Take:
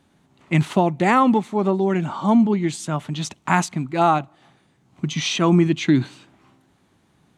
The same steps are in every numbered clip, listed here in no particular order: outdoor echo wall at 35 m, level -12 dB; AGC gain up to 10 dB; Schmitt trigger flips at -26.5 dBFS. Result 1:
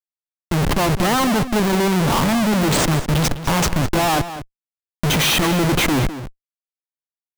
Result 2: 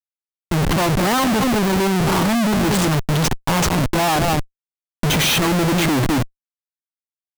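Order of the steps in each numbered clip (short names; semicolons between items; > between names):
AGC > Schmitt trigger > outdoor echo; AGC > outdoor echo > Schmitt trigger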